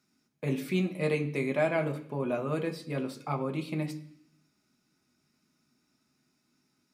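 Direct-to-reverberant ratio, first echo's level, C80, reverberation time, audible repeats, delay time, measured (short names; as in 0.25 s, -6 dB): 4.0 dB, none, 16.5 dB, 0.65 s, none, none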